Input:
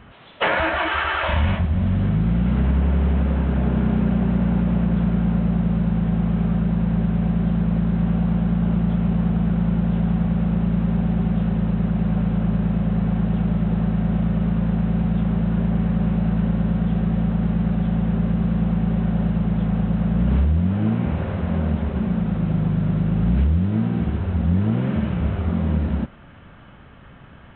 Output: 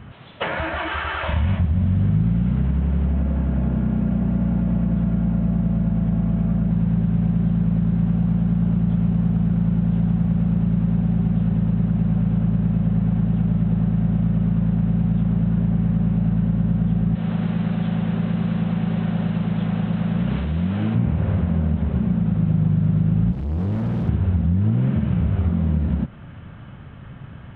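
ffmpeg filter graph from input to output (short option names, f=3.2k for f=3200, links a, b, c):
-filter_complex "[0:a]asettb=1/sr,asplit=3[a][b][c];[a]atrim=end=3.054[d];[b]atrim=start=3.05:end=6.71,asetpts=PTS-STARTPTS,afade=t=in:d=0.004:c=qsin,afade=t=out:st=3.656:d=0.004:c=qsin,lowpass=f=3k:p=1,aecho=1:1:3.6:0.31,atrim=end_sample=161406,aeval=exprs='val(0)+0.0112*sin(2*PI*670*n/s)':c=same[e];[c]atrim=start=6.706[f];[d][e]acrossfade=d=0.004:c1=hsin:c2=qsin[g];[g][f]acrossfade=d=0.004:c1=qsin:c2=hsin,asettb=1/sr,asplit=3[h][i][j];[h]atrim=end=17.154[k];[i]atrim=start=17.15:end=20.95,asetpts=PTS-STARTPTS,afade=t=in:d=0.004:c=qsin,afade=t=out:st=3.796:d=0.004:c=qsin,highpass=f=340:p=1,highshelf=f=2.2k:g=9.5[l];[j]atrim=start=20.946[m];[k][l]acrossfade=d=0.004:c1=hsin:c2=qsin[n];[n][m]acrossfade=d=0.004:c1=qsin:c2=hsin,asettb=1/sr,asplit=3[o][p][q];[o]atrim=end=23.324[r];[p]atrim=start=23.32:end=24.09,asetpts=PTS-STARTPTS,afade=t=in:d=0.004:c=qsin,afade=t=out:st=0.766:d=0.004:c=qsin,highpass=f=67:w=0.5412,highpass=f=67:w=1.3066,asoftclip=type=hard:threshold=-27.5dB[s];[q]atrim=start=24.086[t];[r][s]acrossfade=d=0.004:c1=hsin:c2=qsin[u];[u][t]acrossfade=d=0.004:c1=qsin:c2=hsin,acompressor=threshold=-23dB:ratio=6,equalizer=f=120:t=o:w=1.6:g=10.5"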